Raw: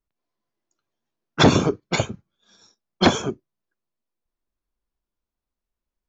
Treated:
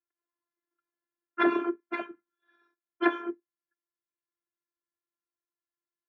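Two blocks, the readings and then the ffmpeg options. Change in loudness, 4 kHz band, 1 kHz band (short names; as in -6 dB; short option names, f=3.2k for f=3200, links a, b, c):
-9.0 dB, -21.5 dB, -7.5 dB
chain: -af "afftfilt=real='hypot(re,im)*cos(PI*b)':imag='0':win_size=512:overlap=0.75,highpass=f=210:w=0.5412,highpass=f=210:w=1.3066,equalizer=f=260:t=q:w=4:g=-6,equalizer=f=680:t=q:w=4:g=-8,equalizer=f=1.6k:t=q:w=4:g=8,lowpass=f=2.2k:w=0.5412,lowpass=f=2.2k:w=1.3066,volume=-3.5dB"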